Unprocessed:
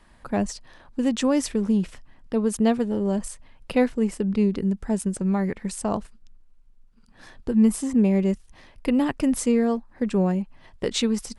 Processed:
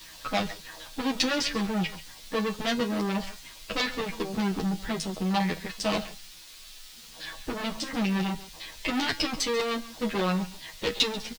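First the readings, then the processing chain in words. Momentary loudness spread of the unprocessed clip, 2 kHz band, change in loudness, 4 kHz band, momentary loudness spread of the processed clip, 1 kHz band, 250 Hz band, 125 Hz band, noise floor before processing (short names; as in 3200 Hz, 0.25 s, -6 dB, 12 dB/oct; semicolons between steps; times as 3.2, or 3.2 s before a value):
11 LU, +5.5 dB, -5.5 dB, +7.0 dB, 15 LU, +1.5 dB, -8.5 dB, -5.5 dB, -55 dBFS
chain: bin magnitudes rounded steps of 15 dB; LFO low-pass saw down 5 Hz 530–5400 Hz; tube stage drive 28 dB, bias 0.6; in parallel at -5.5 dB: requantised 8-bit, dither triangular; on the sum: bell 4000 Hz +13.5 dB 1.8 oct; resonator 160 Hz, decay 0.21 s, harmonics all, mix 70%; on a send: echo 0.138 s -17 dB; on the sum: endless flanger 10.1 ms -1.4 Hz; gain +8.5 dB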